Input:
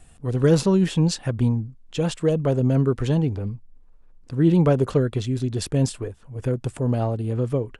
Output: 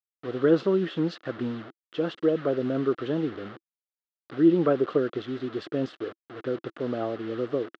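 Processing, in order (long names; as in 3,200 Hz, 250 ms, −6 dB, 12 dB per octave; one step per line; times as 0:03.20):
bit-depth reduction 6 bits, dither none
loudspeaker in its box 320–3,300 Hz, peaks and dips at 330 Hz +7 dB, 910 Hz −10 dB, 1,300 Hz +6 dB, 2,400 Hz −9 dB
level −2 dB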